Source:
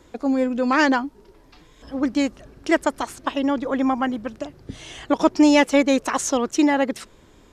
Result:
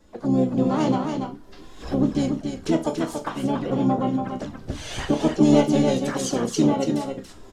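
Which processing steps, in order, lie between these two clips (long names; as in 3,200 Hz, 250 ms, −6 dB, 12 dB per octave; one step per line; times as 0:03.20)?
camcorder AGC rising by 16 dB per second
parametric band 2,400 Hz −12.5 dB 0.31 octaves
resonators tuned to a chord C2 minor, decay 0.29 s
flanger swept by the level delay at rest 3.7 ms, full sweep at −27 dBFS
pitch-shifted copies added −12 semitones −8 dB, −5 semitones −5 dB, +5 semitones −12 dB
on a send: single-tap delay 284 ms −5.5 dB
on the sum: level +6 dB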